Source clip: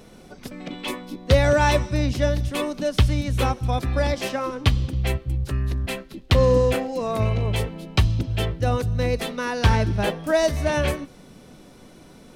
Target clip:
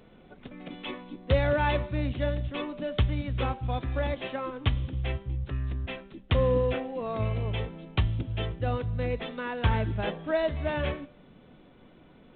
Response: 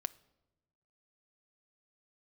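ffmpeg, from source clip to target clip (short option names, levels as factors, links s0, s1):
-af "bandreject=f=197.3:t=h:w=4,bandreject=f=394.6:t=h:w=4,bandreject=f=591.9:t=h:w=4,bandreject=f=789.2:t=h:w=4,bandreject=f=986.5:t=h:w=4,bandreject=f=1183.8:t=h:w=4,bandreject=f=1381.1:t=h:w=4,bandreject=f=1578.4:t=h:w=4,bandreject=f=1775.7:t=h:w=4,bandreject=f=1973:t=h:w=4,bandreject=f=2170.3:t=h:w=4,bandreject=f=2367.6:t=h:w=4,bandreject=f=2564.9:t=h:w=4,bandreject=f=2762.2:t=h:w=4,bandreject=f=2959.5:t=h:w=4,bandreject=f=3156.8:t=h:w=4,bandreject=f=3354.1:t=h:w=4,bandreject=f=3551.4:t=h:w=4,bandreject=f=3748.7:t=h:w=4,bandreject=f=3946:t=h:w=4,bandreject=f=4143.3:t=h:w=4,bandreject=f=4340.6:t=h:w=4,bandreject=f=4537.9:t=h:w=4,bandreject=f=4735.2:t=h:w=4,bandreject=f=4932.5:t=h:w=4,bandreject=f=5129.8:t=h:w=4,bandreject=f=5327.1:t=h:w=4,volume=0.447" -ar 8000 -c:a adpcm_g726 -b:a 32k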